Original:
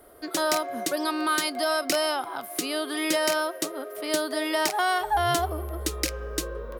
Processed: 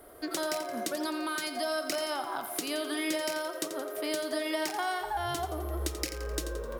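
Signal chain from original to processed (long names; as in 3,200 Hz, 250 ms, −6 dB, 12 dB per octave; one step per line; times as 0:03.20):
downward compressor 5 to 1, threshold −31 dBFS, peak gain reduction 10.5 dB
on a send at −10.5 dB: convolution reverb RT60 0.50 s, pre-delay 3 ms
on the sum: feedback echo at a low word length 86 ms, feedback 55%, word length 9 bits, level −10 dB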